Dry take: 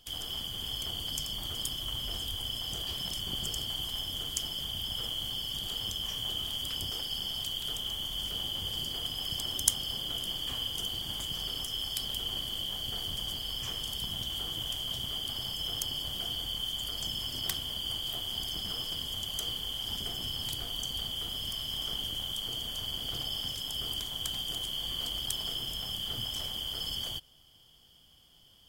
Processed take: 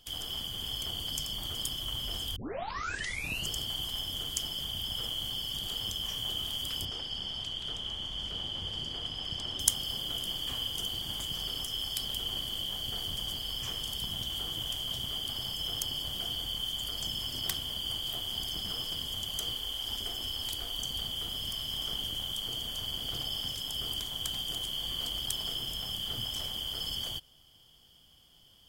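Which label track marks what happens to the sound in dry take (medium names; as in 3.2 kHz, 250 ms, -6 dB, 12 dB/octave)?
2.360000	2.360000	tape start 1.14 s
6.850000	9.600000	distance through air 93 m
19.550000	20.790000	peaking EQ 150 Hz -13 dB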